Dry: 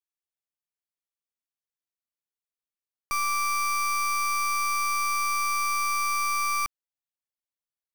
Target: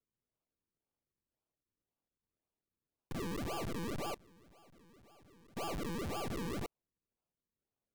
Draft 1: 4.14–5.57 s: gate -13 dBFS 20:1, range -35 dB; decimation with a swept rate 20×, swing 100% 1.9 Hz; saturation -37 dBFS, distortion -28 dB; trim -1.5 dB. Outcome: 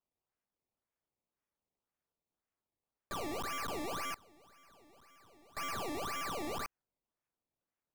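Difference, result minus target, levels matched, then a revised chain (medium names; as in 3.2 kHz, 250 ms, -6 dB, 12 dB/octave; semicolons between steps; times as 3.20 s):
decimation with a swept rate: distortion -5 dB
4.14–5.57 s: gate -13 dBFS 20:1, range -35 dB; decimation with a swept rate 44×, swing 100% 1.9 Hz; saturation -37 dBFS, distortion -28 dB; trim -1.5 dB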